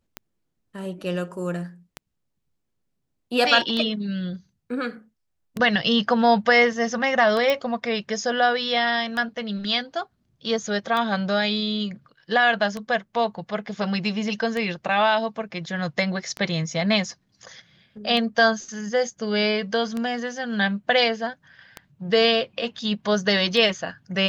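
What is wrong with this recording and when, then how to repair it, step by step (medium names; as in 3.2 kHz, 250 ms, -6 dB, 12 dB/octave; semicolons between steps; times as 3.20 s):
tick 33 1/3 rpm -15 dBFS
7.50 s: pop -10 dBFS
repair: de-click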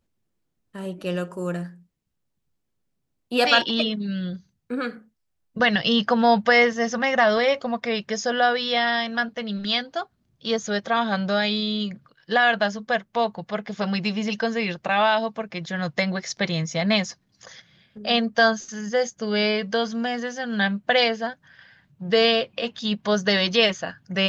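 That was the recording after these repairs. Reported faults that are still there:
nothing left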